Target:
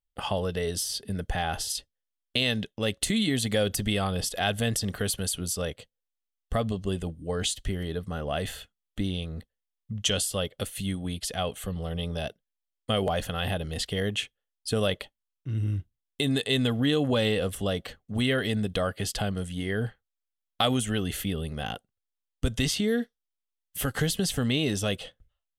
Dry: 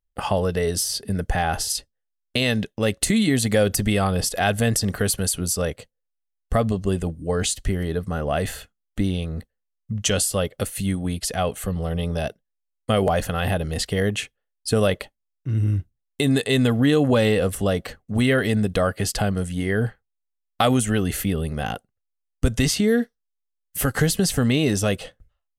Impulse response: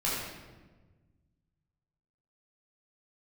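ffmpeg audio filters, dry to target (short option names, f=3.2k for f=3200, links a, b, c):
-af "equalizer=f=3.3k:w=2.8:g=8.5,volume=-7dB"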